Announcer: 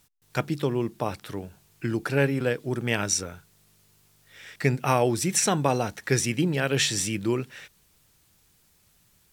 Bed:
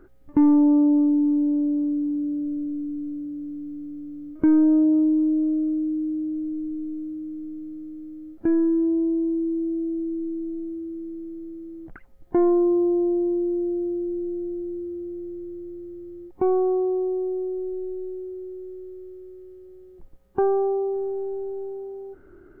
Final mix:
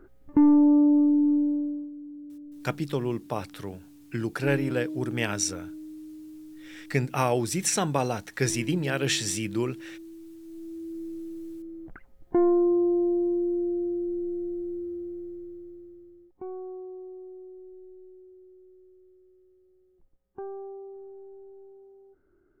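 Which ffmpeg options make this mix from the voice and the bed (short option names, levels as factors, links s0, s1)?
-filter_complex "[0:a]adelay=2300,volume=0.75[s0];[1:a]volume=4.22,afade=t=out:st=1.34:d=0.56:silence=0.177828,afade=t=in:st=10.42:d=0.6:silence=0.199526,afade=t=out:st=14.93:d=1.42:silence=0.188365[s1];[s0][s1]amix=inputs=2:normalize=0"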